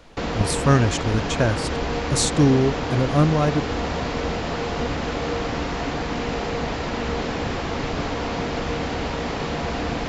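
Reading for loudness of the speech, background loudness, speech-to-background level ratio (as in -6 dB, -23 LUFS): -21.5 LUFS, -26.5 LUFS, 5.0 dB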